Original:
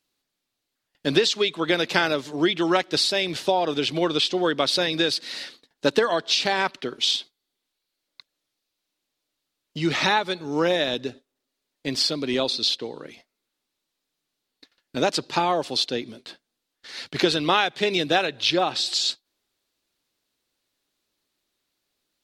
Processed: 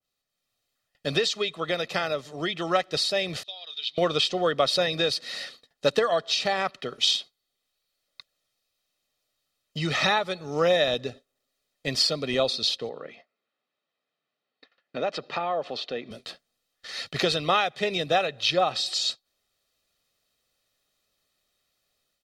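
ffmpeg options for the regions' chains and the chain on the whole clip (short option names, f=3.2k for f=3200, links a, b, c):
-filter_complex "[0:a]asettb=1/sr,asplit=3[a][b][c];[a]atrim=end=3.434[d];[b]atrim=start=3.43:end=3.98,asetpts=PTS-STARTPTS,afade=t=in:d=0.004:c=qsin,afade=t=out:st=0.546:d=0.004:c=qsin,agate=range=-14dB:threshold=-33dB:ratio=16:release=100:detection=peak,bandpass=f=3.7k:t=q:w=5.5[e];[c]atrim=start=3.976[f];[d][e]acrossfade=d=0.004:c1=hsin:c2=qsin[g];[g][f]acrossfade=d=0.004:c1=qsin:c2=hsin,asettb=1/sr,asplit=3[h][i][j];[h]atrim=end=12.894[k];[i]atrim=start=12.89:end=16.11,asetpts=PTS-STARTPTS,afade=t=in:d=0.004:c=qsin,afade=t=out:st=3.216:d=0.004:c=qsin,highpass=200,lowpass=2.6k,acompressor=threshold=-31dB:ratio=2:attack=3.2:release=140:knee=1:detection=peak[l];[j]atrim=start=16.106[m];[k][l]acrossfade=d=0.004:c1=hsin:c2=qsin[n];[n][m]acrossfade=d=0.004:c1=qsin:c2=hsin,aecho=1:1:1.6:0.59,dynaudnorm=f=260:g=3:m=8dB,adynamicequalizer=threshold=0.0398:dfrequency=1700:dqfactor=0.7:tfrequency=1700:tqfactor=0.7:attack=5:release=100:ratio=0.375:range=2:mode=cutabove:tftype=highshelf,volume=-7dB"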